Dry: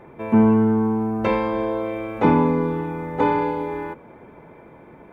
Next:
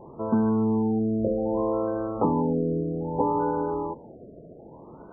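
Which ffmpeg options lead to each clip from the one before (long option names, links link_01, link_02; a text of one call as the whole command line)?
ffmpeg -i in.wav -af "acompressor=threshold=-20dB:ratio=6,afftfilt=real='re*lt(b*sr/1024,690*pow(1600/690,0.5+0.5*sin(2*PI*0.63*pts/sr)))':imag='im*lt(b*sr/1024,690*pow(1600/690,0.5+0.5*sin(2*PI*0.63*pts/sr)))':win_size=1024:overlap=0.75" out.wav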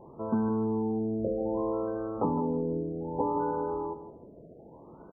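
ffmpeg -i in.wav -filter_complex "[0:a]asplit=2[link_01][link_02];[link_02]adelay=161,lowpass=frequency=1200:poles=1,volume=-11dB,asplit=2[link_03][link_04];[link_04]adelay=161,lowpass=frequency=1200:poles=1,volume=0.32,asplit=2[link_05][link_06];[link_06]adelay=161,lowpass=frequency=1200:poles=1,volume=0.32[link_07];[link_01][link_03][link_05][link_07]amix=inputs=4:normalize=0,volume=-5dB" out.wav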